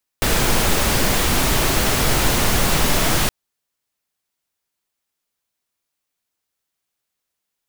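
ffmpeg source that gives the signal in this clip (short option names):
-f lavfi -i "anoisesrc=c=pink:a=0.724:d=3.07:r=44100:seed=1"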